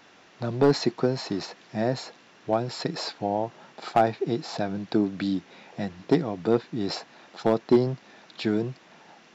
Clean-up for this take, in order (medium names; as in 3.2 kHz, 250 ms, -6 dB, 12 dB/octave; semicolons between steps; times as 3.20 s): clip repair -11 dBFS